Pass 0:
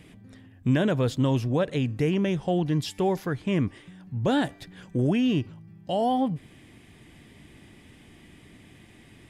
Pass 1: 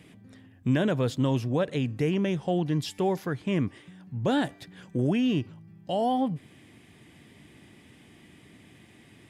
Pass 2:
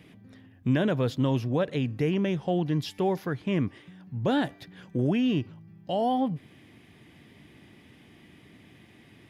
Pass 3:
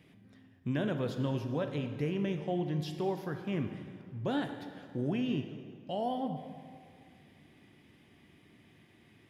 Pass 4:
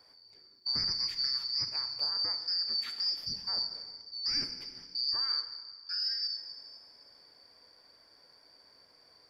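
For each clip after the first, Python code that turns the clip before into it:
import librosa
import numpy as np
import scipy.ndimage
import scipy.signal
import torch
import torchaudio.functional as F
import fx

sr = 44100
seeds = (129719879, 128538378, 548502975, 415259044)

y1 = scipy.signal.sosfilt(scipy.signal.butter(2, 91.0, 'highpass', fs=sr, output='sos'), x)
y1 = y1 * 10.0 ** (-1.5 / 20.0)
y2 = fx.peak_eq(y1, sr, hz=8100.0, db=-10.0, octaves=0.57)
y3 = fx.rev_plate(y2, sr, seeds[0], rt60_s=2.1, hf_ratio=0.75, predelay_ms=0, drr_db=6.0)
y3 = y3 * 10.0 ** (-8.0 / 20.0)
y4 = fx.band_shuffle(y3, sr, order='2341')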